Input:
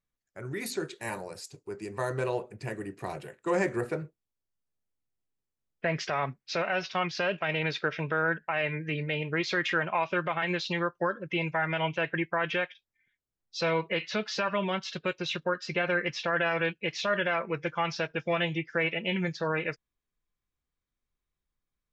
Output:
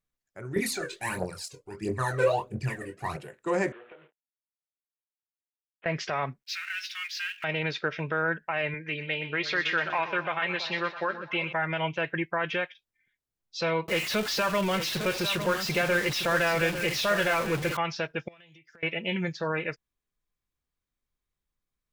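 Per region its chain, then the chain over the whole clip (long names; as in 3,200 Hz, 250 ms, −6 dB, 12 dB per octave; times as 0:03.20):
0:00.56–0:03.17: phase shifter 1.5 Hz, delay 2.1 ms, feedback 80% + double-tracking delay 23 ms −6 dB + one half of a high-frequency compander decoder only
0:03.72–0:05.86: variable-slope delta modulation 16 kbit/s + high-pass filter 520 Hz + downward compressor, threshold −46 dBFS
0:06.43–0:07.44: mu-law and A-law mismatch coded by mu + Butterworth high-pass 1,600 Hz
0:08.74–0:11.53: low-pass filter 3,800 Hz + spectral tilt +2.5 dB per octave + echo with a time of its own for lows and highs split 830 Hz, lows 326 ms, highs 123 ms, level −11 dB
0:13.88–0:17.77: converter with a step at zero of −29.5 dBFS + single-tap delay 854 ms −9.5 dB
0:18.28–0:18.83: first-order pre-emphasis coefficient 0.8 + downward compressor 12 to 1, threshold −51 dBFS + one half of a high-frequency compander encoder only
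whole clip: no processing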